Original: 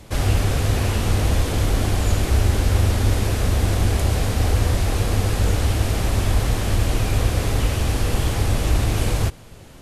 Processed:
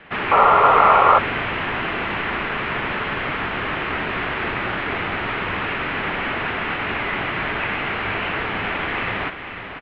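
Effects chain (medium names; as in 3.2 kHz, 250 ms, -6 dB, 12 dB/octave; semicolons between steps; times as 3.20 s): delay 495 ms -8.5 dB; painted sound noise, 0.31–1.19 s, 760–1800 Hz -21 dBFS; mistuned SSB -380 Hz 480–3300 Hz; peaking EQ 1.7 kHz +10 dB 2.4 oct; trim +1 dB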